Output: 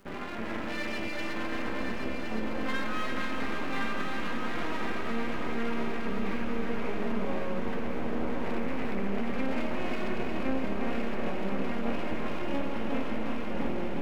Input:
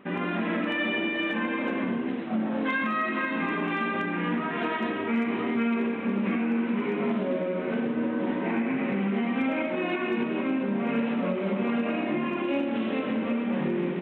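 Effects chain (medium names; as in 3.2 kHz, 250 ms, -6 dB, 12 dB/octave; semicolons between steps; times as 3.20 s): low-pass 2.9 kHz; de-hum 59.01 Hz, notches 6; half-wave rectifier; crackle 260 per s -51 dBFS; on a send: multi-head delay 355 ms, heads first and third, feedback 66%, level -7 dB; on the sum: trim -2.5 dB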